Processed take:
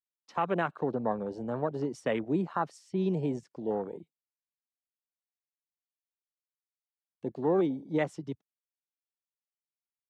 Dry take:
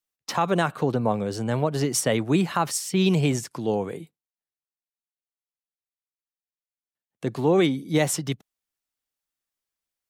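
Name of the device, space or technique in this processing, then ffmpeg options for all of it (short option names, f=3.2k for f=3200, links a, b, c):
over-cleaned archive recording: -af "highpass=190,lowpass=6k,afwtdn=0.0355,volume=-6dB"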